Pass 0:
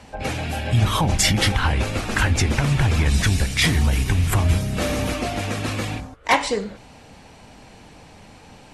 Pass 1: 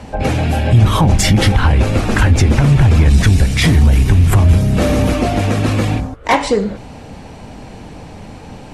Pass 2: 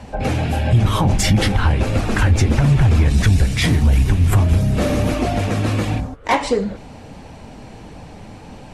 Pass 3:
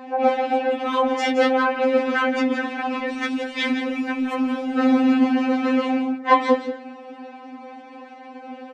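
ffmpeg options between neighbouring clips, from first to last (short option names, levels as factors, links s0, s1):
-filter_complex "[0:a]asplit=2[s0][s1];[s1]acompressor=threshold=0.0562:ratio=6,volume=0.891[s2];[s0][s2]amix=inputs=2:normalize=0,tiltshelf=f=890:g=4.5,acontrast=29,volume=0.891"
-af "flanger=delay=1.1:depth=8.6:regen=-54:speed=1.5:shape=sinusoidal"
-af "highpass=270,lowpass=2400,aecho=1:1:172:0.316,afftfilt=real='re*3.46*eq(mod(b,12),0)':imag='im*3.46*eq(mod(b,12),0)':win_size=2048:overlap=0.75,volume=1.58"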